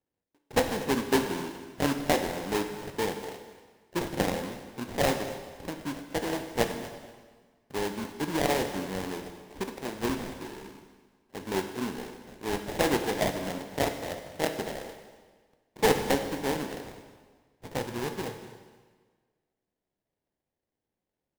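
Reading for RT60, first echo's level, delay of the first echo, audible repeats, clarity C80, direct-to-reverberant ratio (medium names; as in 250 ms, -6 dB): 1.5 s, -18.0 dB, 238 ms, 2, 9.0 dB, 5.5 dB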